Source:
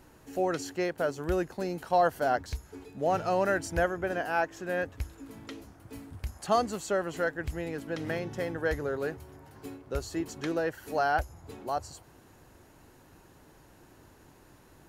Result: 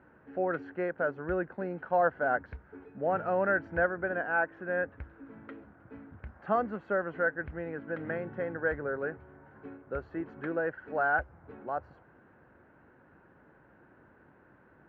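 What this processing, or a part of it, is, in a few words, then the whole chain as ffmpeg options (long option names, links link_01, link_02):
bass cabinet: -af "highpass=73,equalizer=frequency=99:width_type=q:width=4:gain=-4,equalizer=frequency=210:width_type=q:width=4:gain=4,equalizer=frequency=530:width_type=q:width=4:gain=4,equalizer=frequency=1500:width_type=q:width=4:gain=9,lowpass=frequency=2100:width=0.5412,lowpass=frequency=2100:width=1.3066,volume=-4dB"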